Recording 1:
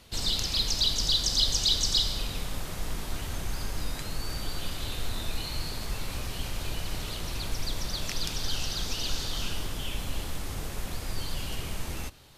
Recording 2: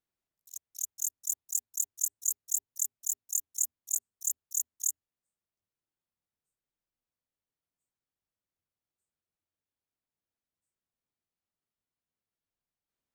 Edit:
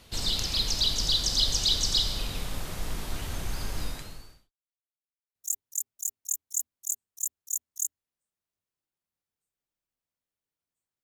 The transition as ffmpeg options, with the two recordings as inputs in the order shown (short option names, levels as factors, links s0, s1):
-filter_complex "[0:a]apad=whole_dur=11.03,atrim=end=11.03,asplit=2[s0][s1];[s0]atrim=end=4.52,asetpts=PTS-STARTPTS,afade=t=out:st=3.84:d=0.68:c=qua[s2];[s1]atrim=start=4.52:end=5.35,asetpts=PTS-STARTPTS,volume=0[s3];[1:a]atrim=start=2.39:end=8.07,asetpts=PTS-STARTPTS,afade=t=in:d=0.004:c=hsin[s4];[s2][s3][s4]concat=n=3:v=0:a=1"